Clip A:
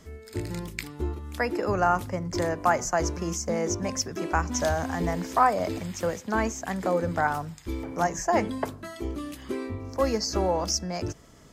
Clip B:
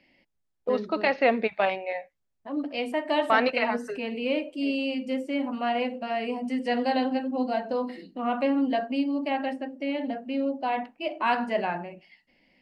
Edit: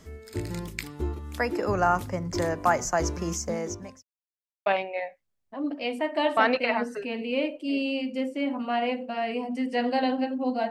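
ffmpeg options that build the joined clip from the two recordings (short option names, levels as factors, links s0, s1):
-filter_complex "[0:a]apad=whole_dur=10.7,atrim=end=10.7,asplit=2[s0][s1];[s0]atrim=end=4.03,asetpts=PTS-STARTPTS,afade=t=out:st=3.37:d=0.66[s2];[s1]atrim=start=4.03:end=4.66,asetpts=PTS-STARTPTS,volume=0[s3];[1:a]atrim=start=1.59:end=7.63,asetpts=PTS-STARTPTS,afade=t=in:d=0.004:c=hsin[s4];[s2][s3][s4]concat=n=3:v=0:a=1"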